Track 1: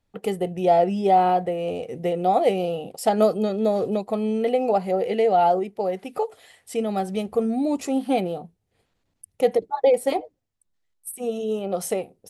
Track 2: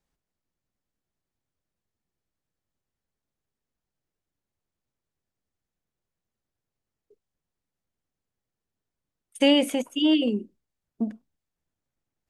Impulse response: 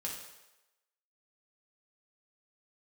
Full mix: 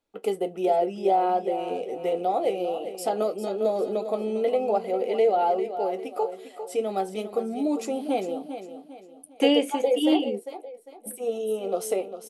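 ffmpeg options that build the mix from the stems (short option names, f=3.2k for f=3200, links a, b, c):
-filter_complex "[0:a]bandreject=f=1.8k:w=8.2,alimiter=limit=-13dB:level=0:latency=1:release=447,volume=1dB,asplit=3[a][b][c];[b]volume=-10.5dB[d];[1:a]volume=0dB[e];[c]apad=whole_len=542107[f];[e][f]sidechaingate=range=-33dB:threshold=-49dB:ratio=16:detection=peak[g];[d]aecho=0:1:401|802|1203|1604|2005:1|0.36|0.13|0.0467|0.0168[h];[a][g][h]amix=inputs=3:normalize=0,lowshelf=f=210:t=q:w=1.5:g=-13,flanger=delay=9.2:depth=2:regen=-57:speed=0.38:shape=triangular"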